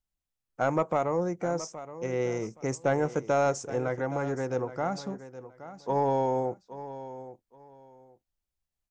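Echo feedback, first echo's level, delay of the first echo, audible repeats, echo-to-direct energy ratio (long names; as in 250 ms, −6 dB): 22%, −14.0 dB, 821 ms, 2, −14.0 dB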